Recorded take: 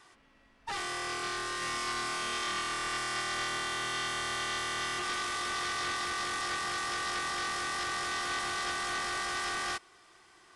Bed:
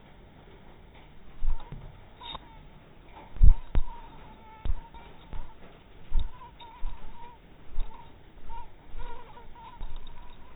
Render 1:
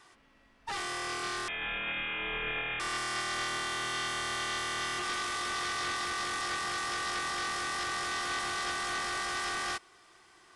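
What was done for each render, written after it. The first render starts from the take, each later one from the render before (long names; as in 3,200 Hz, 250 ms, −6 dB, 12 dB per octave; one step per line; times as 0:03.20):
0:01.48–0:02.80: voice inversion scrambler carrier 3,600 Hz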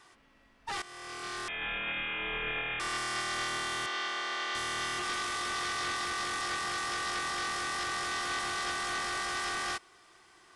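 0:00.82–0:01.63: fade in, from −15.5 dB
0:03.86–0:04.55: three-way crossover with the lows and the highs turned down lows −22 dB, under 270 Hz, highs −21 dB, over 6,000 Hz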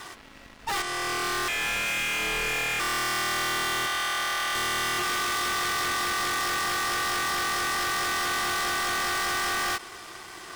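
leveller curve on the samples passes 5
every ending faded ahead of time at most 360 dB per second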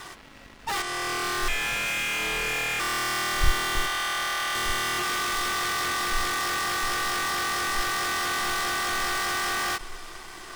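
mix in bed −7.5 dB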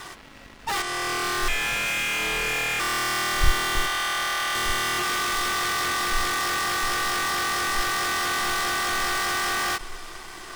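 level +2 dB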